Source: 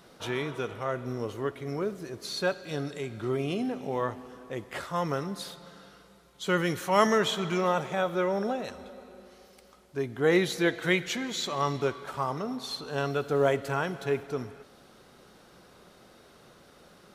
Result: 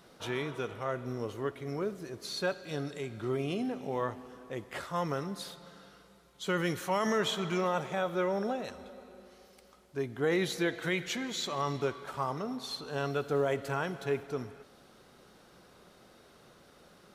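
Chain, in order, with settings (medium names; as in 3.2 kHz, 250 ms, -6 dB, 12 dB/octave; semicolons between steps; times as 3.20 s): peak limiter -16.5 dBFS, peak gain reduction 8.5 dB; trim -3 dB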